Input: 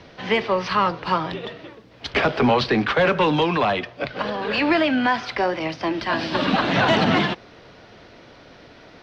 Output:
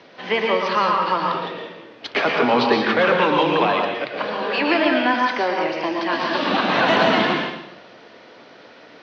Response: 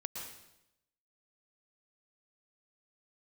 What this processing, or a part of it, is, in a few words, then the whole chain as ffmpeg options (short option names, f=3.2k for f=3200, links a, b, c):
supermarket ceiling speaker: -filter_complex "[0:a]highpass=260,lowpass=5.5k[a];[1:a]atrim=start_sample=2205[b];[a][b]afir=irnorm=-1:irlink=0,volume=3dB"